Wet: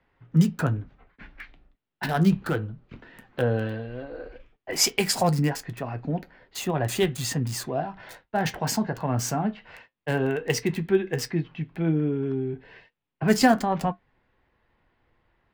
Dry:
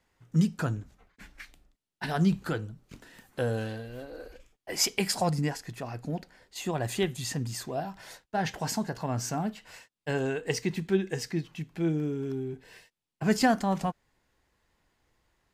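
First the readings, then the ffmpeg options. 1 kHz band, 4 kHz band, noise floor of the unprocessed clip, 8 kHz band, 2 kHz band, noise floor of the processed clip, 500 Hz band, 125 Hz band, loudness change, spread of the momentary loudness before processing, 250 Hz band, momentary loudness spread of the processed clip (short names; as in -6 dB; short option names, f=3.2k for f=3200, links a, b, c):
+4.5 dB, +4.5 dB, under -85 dBFS, +4.5 dB, +4.5 dB, -83 dBFS, +5.0 dB, +5.0 dB, +4.5 dB, 18 LU, +4.5 dB, 16 LU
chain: -filter_complex "[0:a]acrossover=split=240|3400[a][b][c];[c]acrusher=bits=6:mix=0:aa=0.000001[d];[a][b][d]amix=inputs=3:normalize=0,flanger=delay=7.2:depth=1.4:regen=-65:speed=0.16:shape=sinusoidal,volume=9dB"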